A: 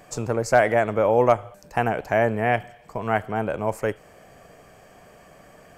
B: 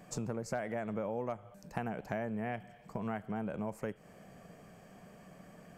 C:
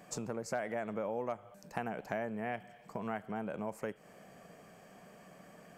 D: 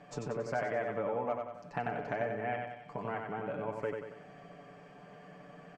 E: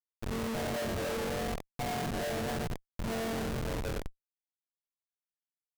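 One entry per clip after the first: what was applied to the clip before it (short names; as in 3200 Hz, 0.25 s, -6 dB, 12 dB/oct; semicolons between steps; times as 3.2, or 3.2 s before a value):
bell 190 Hz +12 dB 0.87 oct; compressor 5:1, threshold -26 dBFS, peak gain reduction 14 dB; gain -8.5 dB
low shelf 160 Hz -12 dB; gain +1.5 dB
LPF 3600 Hz 12 dB/oct; comb 6.9 ms, depth 64%; on a send: feedback echo 93 ms, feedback 48%, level -4.5 dB
median-filter separation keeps harmonic; flutter echo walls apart 3.8 m, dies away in 1 s; Schmitt trigger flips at -32 dBFS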